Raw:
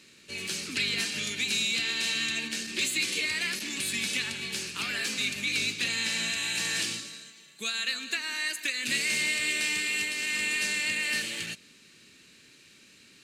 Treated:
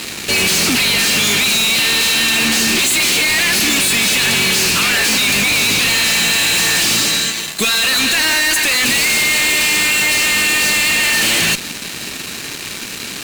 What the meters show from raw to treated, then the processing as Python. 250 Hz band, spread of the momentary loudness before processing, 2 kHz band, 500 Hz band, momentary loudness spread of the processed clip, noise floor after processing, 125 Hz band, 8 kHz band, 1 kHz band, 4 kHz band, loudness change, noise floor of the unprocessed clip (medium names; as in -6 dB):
+18.0 dB, 7 LU, +15.5 dB, +19.0 dB, 9 LU, -27 dBFS, +18.5 dB, +18.0 dB, +22.0 dB, +16.5 dB, +16.5 dB, -56 dBFS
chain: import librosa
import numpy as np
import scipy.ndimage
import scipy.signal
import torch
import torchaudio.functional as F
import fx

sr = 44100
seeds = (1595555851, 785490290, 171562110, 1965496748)

p1 = fx.over_compress(x, sr, threshold_db=-35.0, ratio=-0.5)
p2 = x + (p1 * librosa.db_to_amplitude(-0.5))
y = fx.fuzz(p2, sr, gain_db=42.0, gate_db=-47.0)